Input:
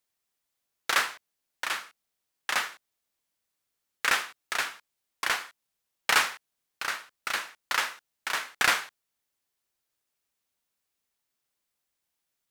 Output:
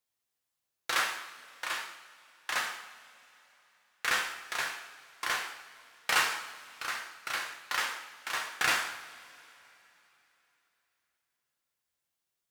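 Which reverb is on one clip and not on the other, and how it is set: two-slope reverb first 0.71 s, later 3.4 s, from -18 dB, DRR 0.5 dB; gain -6 dB

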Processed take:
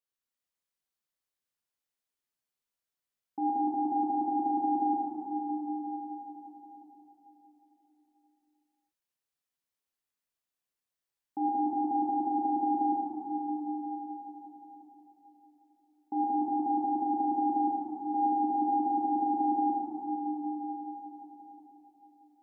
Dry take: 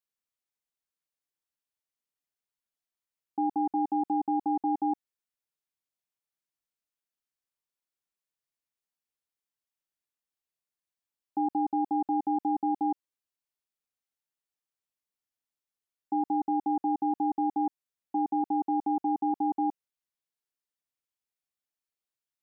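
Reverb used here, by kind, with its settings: plate-style reverb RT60 4.6 s, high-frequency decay 0.85×, DRR -5.5 dB; gain -5 dB

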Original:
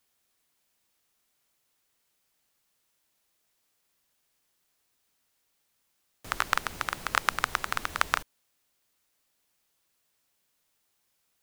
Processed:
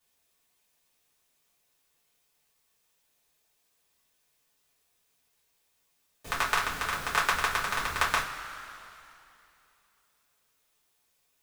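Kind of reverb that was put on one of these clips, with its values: two-slope reverb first 0.22 s, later 2.8 s, from -18 dB, DRR -7 dB; gain -5.5 dB

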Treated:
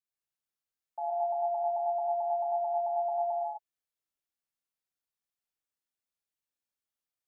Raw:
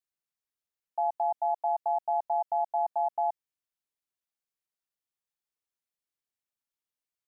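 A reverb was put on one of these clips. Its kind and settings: non-linear reverb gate 0.29 s flat, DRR -4.5 dB; gain -7.5 dB

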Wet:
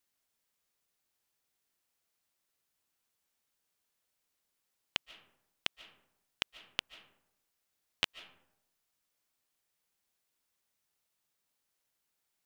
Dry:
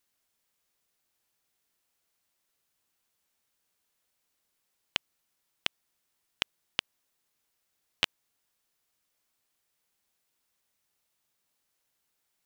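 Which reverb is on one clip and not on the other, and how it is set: digital reverb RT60 0.83 s, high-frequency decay 0.45×, pre-delay 0.105 s, DRR 15.5 dB; gain -4 dB

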